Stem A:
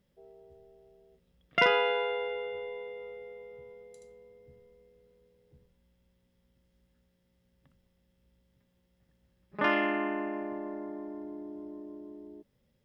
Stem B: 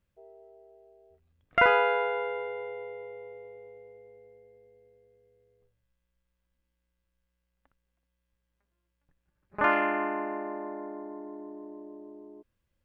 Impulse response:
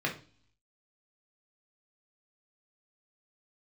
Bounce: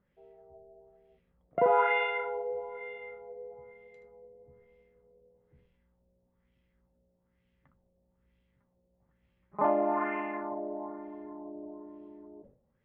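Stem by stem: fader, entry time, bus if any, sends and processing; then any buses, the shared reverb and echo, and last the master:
−3.0 dB, 0.00 s, no send, no processing
−4.5 dB, 0.00 s, no send, high-pass filter 640 Hz 12 dB per octave; string-ensemble chorus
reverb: not used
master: auto-filter low-pass sine 1.1 Hz 570–2,700 Hz; level that may fall only so fast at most 120 dB per second

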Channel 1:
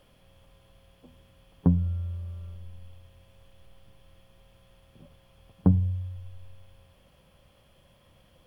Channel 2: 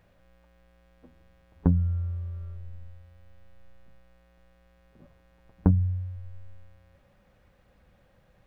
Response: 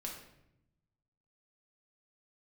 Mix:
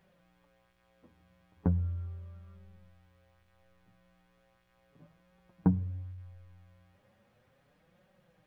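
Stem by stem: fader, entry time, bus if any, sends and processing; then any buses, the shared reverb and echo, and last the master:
−17.5 dB, 0.00 s, no send, no processing
−1.0 dB, 0.00 s, send −16.5 dB, high-pass filter 97 Hz 12 dB per octave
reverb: on, RT60 0.80 s, pre-delay 5 ms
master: flanger 0.37 Hz, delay 5.1 ms, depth 5.8 ms, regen +17%

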